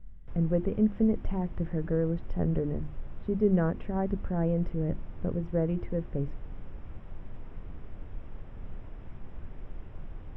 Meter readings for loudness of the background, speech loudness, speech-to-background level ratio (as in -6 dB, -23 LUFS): -47.5 LUFS, -30.5 LUFS, 17.0 dB